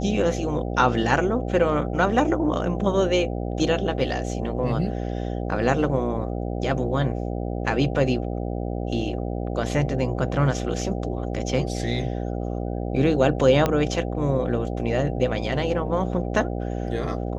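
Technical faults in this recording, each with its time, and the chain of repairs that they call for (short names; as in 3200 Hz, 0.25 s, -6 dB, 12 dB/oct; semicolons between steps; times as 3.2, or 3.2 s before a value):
buzz 60 Hz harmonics 13 -28 dBFS
13.66 pop -8 dBFS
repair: de-click; de-hum 60 Hz, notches 13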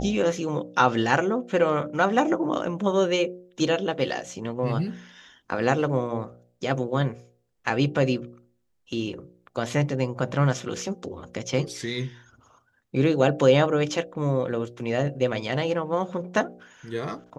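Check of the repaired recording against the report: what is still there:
13.66 pop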